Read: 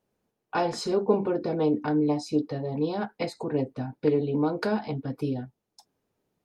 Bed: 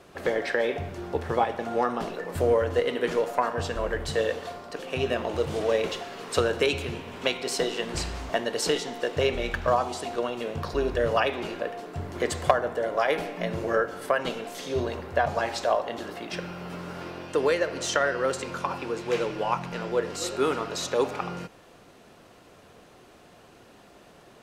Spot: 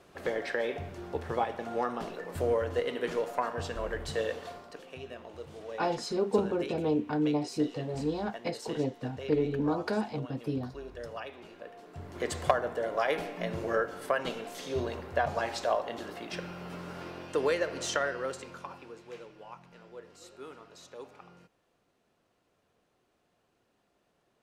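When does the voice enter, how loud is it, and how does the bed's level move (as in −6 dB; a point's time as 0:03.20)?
5.25 s, −4.0 dB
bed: 0:04.57 −6 dB
0:05.04 −17 dB
0:11.50 −17 dB
0:12.36 −4.5 dB
0:17.88 −4.5 dB
0:19.33 −21 dB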